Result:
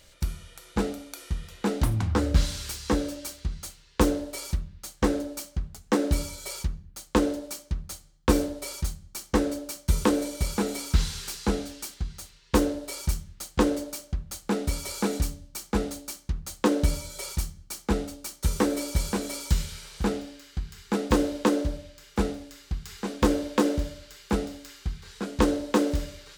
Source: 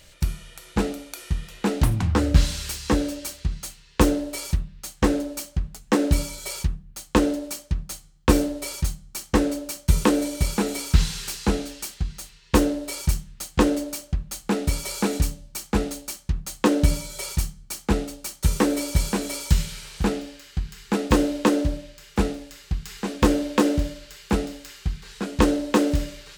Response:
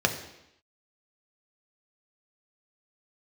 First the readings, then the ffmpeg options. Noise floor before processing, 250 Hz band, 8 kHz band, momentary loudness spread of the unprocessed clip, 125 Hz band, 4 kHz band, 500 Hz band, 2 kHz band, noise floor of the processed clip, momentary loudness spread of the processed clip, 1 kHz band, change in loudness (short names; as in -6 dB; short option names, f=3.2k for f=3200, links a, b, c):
-52 dBFS, -4.0 dB, -4.0 dB, 11 LU, -5.0 dB, -4.0 dB, -2.5 dB, -4.5 dB, -56 dBFS, 12 LU, -3.5 dB, -4.0 dB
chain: -filter_complex "[0:a]asplit=2[a][b];[1:a]atrim=start_sample=2205,afade=t=out:st=0.3:d=0.01,atrim=end_sample=13671[c];[b][c]afir=irnorm=-1:irlink=0,volume=-24.5dB[d];[a][d]amix=inputs=2:normalize=0,volume=-4.5dB"